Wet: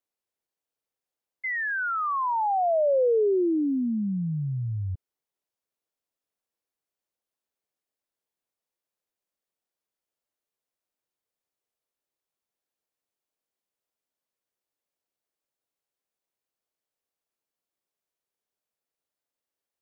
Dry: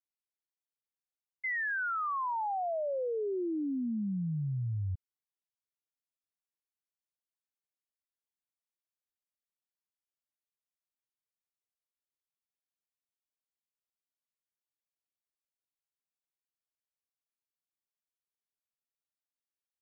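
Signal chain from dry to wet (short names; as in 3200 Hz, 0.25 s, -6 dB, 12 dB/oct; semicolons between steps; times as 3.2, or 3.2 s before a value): bell 490 Hz +9 dB 1.9 oct; gain +3 dB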